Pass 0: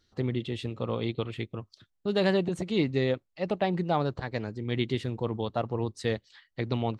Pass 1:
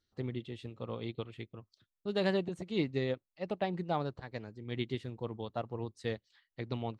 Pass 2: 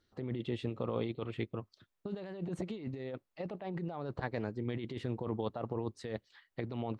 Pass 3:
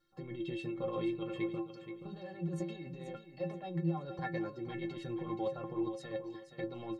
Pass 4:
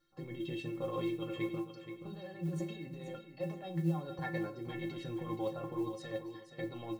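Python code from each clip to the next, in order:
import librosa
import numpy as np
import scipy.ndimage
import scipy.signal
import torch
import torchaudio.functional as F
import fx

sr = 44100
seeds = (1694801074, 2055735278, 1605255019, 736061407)

y1 = fx.upward_expand(x, sr, threshold_db=-37.0, expansion=1.5)
y1 = F.gain(torch.from_numpy(y1), -5.0).numpy()
y2 = fx.high_shelf(y1, sr, hz=2600.0, db=-11.5)
y2 = fx.over_compress(y2, sr, threshold_db=-42.0, ratio=-1.0)
y2 = fx.low_shelf(y2, sr, hz=180.0, db=-6.5)
y2 = F.gain(torch.from_numpy(y2), 6.5).numpy()
y3 = fx.stiff_resonator(y2, sr, f0_hz=160.0, decay_s=0.35, stiffness=0.03)
y3 = fx.echo_feedback(y3, sr, ms=476, feedback_pct=33, wet_db=-10.0)
y3 = F.gain(torch.from_numpy(y3), 11.5).numpy()
y4 = fx.rev_fdn(y3, sr, rt60_s=0.45, lf_ratio=1.0, hf_ratio=1.0, size_ms=20.0, drr_db=7.0)
y4 = fx.mod_noise(y4, sr, seeds[0], snr_db=32)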